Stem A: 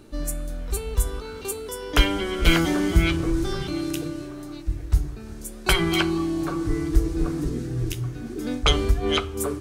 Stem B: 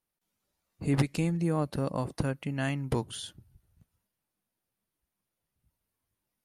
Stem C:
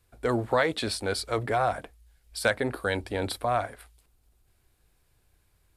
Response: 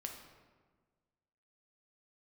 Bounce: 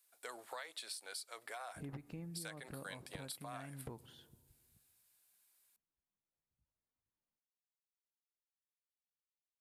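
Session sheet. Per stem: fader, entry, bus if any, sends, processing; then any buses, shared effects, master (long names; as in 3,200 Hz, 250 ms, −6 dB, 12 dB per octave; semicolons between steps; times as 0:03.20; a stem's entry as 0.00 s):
muted
0.0 dB, 0.95 s, send −12 dB, low-pass filter 1,500 Hz 12 dB per octave
+0.5 dB, 0.00 s, send −23.5 dB, high-pass filter 700 Hz 12 dB per octave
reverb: on, RT60 1.5 s, pre-delay 4 ms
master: first-order pre-emphasis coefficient 0.8; downward compressor 6 to 1, threshold −44 dBFS, peak gain reduction 14 dB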